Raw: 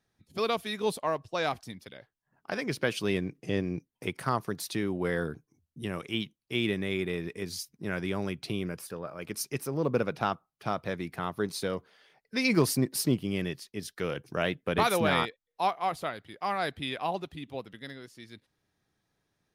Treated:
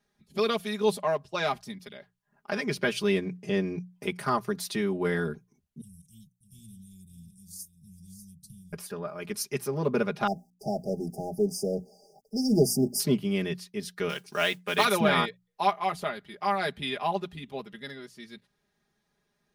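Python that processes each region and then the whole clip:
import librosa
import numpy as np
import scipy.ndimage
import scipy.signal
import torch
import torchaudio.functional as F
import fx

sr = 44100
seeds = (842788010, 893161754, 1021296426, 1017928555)

y = fx.chain(x, sr, fx.cheby2_bandstop(low_hz=510.0, high_hz=1800.0, order=4, stop_db=80),
    fx.echo_single(ms=594, db=-10.5), at=(5.81, 8.73))
y = fx.chain(y, sr, fx.law_mismatch(coded='mu'),
    fx.brickwall_bandstop(low_hz=830.0, high_hz=4700.0),
    fx.hum_notches(base_hz=60, count=5), at=(10.27, 13.0))
y = fx.chain(y, sr, fx.lowpass(hz=9200.0, slope=12),
    fx.tilt_eq(slope=3.5),
    fx.mod_noise(seeds[0], snr_db=20), at=(14.09, 14.85))
y = fx.high_shelf(y, sr, hz=11000.0, db=-3.0)
y = fx.hum_notches(y, sr, base_hz=60, count=3)
y = y + 0.87 * np.pad(y, (int(4.9 * sr / 1000.0), 0))[:len(y)]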